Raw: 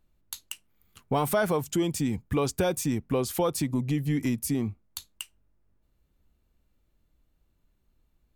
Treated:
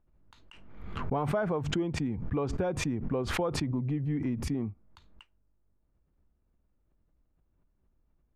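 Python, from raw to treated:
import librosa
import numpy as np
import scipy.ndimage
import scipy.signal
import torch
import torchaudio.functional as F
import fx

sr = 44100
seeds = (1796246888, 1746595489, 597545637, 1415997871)

y = scipy.signal.sosfilt(scipy.signal.butter(2, 1500.0, 'lowpass', fs=sr, output='sos'), x)
y = fx.pre_swell(y, sr, db_per_s=41.0)
y = y * 10.0 ** (-4.5 / 20.0)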